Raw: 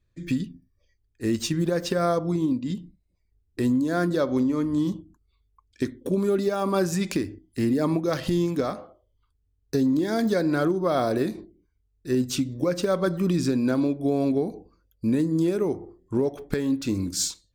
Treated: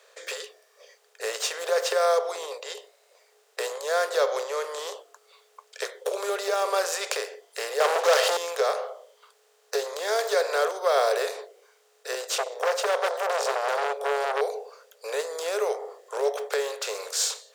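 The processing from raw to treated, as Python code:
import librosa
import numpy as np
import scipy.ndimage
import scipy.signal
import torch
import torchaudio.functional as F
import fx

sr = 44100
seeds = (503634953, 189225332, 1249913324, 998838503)

y = fx.leveller(x, sr, passes=3, at=(7.8, 8.37))
y = fx.transformer_sat(y, sr, knee_hz=1200.0, at=(12.31, 14.41))
y = fx.bin_compress(y, sr, power=0.6)
y = scipy.signal.sosfilt(scipy.signal.cheby1(8, 1.0, 420.0, 'highpass', fs=sr, output='sos'), y)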